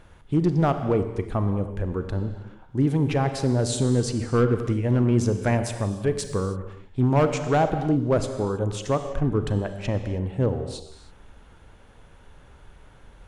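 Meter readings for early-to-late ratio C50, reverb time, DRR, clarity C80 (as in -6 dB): 8.5 dB, no single decay rate, 8.0 dB, 9.5 dB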